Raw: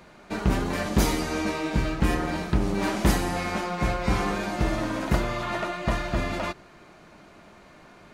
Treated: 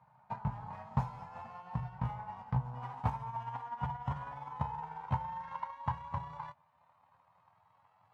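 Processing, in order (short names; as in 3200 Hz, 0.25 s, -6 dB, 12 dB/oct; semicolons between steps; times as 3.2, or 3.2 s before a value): gliding pitch shift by +11 st starting unshifted; transient shaper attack +10 dB, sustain -2 dB; double band-pass 340 Hz, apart 2.8 oct; gain -3.5 dB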